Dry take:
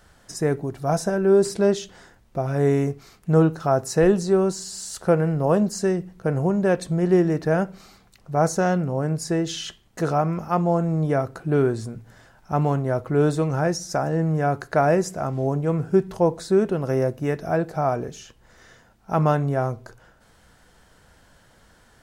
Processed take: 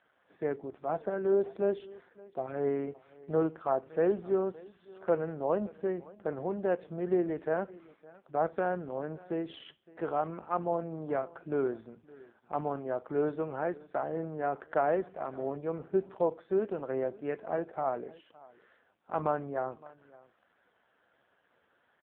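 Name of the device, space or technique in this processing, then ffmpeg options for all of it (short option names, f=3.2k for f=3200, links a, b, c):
satellite phone: -af "highpass=310,lowpass=3k,aecho=1:1:565:0.0794,volume=-7.5dB" -ar 8000 -c:a libopencore_amrnb -b:a 5150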